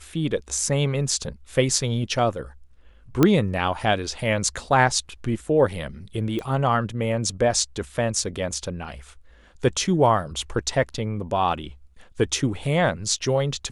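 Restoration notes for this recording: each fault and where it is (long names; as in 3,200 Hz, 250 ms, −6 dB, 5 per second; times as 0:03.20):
0:03.23: click −4 dBFS
0:06.39: click −18 dBFS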